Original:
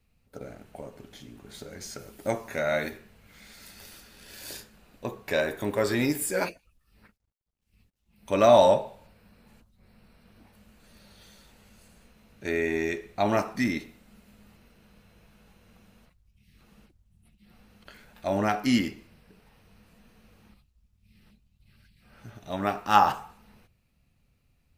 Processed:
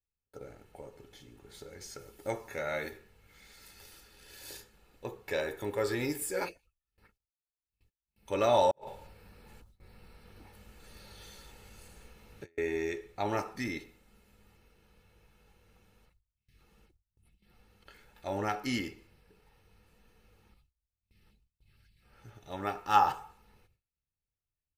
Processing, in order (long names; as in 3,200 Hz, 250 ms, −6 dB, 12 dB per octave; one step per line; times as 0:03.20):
noise gate with hold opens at −52 dBFS
comb filter 2.3 ms, depth 50%
0:08.71–0:12.58: compressor whose output falls as the input rises −40 dBFS, ratio −0.5
level −7 dB